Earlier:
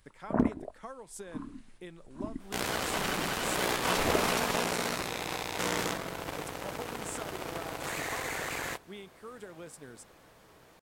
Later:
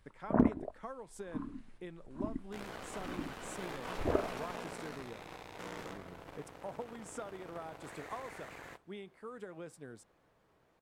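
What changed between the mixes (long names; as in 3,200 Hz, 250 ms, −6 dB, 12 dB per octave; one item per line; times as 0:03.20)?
second sound −12.0 dB
master: add high-shelf EQ 3,500 Hz −11 dB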